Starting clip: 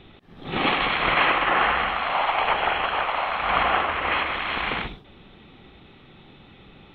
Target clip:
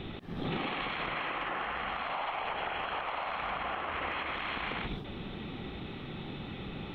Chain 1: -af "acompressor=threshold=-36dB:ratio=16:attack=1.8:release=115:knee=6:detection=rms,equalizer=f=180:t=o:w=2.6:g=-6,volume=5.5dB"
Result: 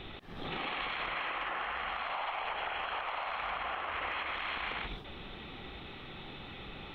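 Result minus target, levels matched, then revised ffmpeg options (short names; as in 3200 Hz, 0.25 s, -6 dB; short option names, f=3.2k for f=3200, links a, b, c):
250 Hz band -7.5 dB
-af "acompressor=threshold=-36dB:ratio=16:attack=1.8:release=115:knee=6:detection=rms,equalizer=f=180:t=o:w=2.6:g=4,volume=5.5dB"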